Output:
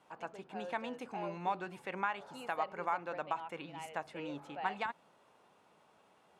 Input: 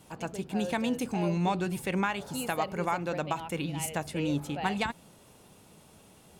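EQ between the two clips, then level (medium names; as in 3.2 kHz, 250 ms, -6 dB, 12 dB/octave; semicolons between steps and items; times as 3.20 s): band-pass filter 1.1 kHz, Q 0.95; -3.0 dB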